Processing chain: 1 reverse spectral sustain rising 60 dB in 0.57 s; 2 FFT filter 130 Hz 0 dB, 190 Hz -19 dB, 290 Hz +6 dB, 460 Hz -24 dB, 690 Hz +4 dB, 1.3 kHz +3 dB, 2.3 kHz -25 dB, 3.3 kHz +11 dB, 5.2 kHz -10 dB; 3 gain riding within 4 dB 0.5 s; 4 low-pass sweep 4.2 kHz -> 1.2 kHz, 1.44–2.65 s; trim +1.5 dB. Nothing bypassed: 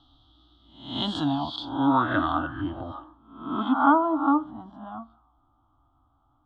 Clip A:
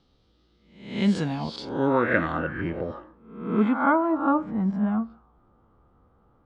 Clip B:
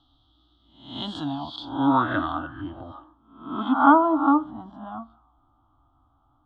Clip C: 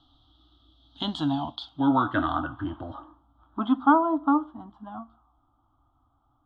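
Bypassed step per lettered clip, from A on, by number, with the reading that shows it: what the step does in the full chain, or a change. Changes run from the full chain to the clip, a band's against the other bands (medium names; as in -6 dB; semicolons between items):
2, momentary loudness spread change -7 LU; 3, crest factor change +2.0 dB; 1, 4 kHz band -2.5 dB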